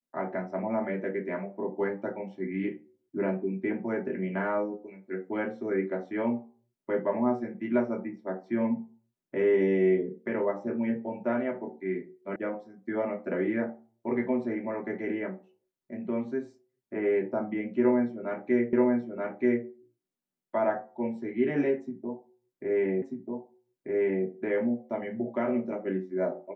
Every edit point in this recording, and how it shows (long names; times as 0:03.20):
0:12.36: cut off before it has died away
0:18.73: the same again, the last 0.93 s
0:23.02: the same again, the last 1.24 s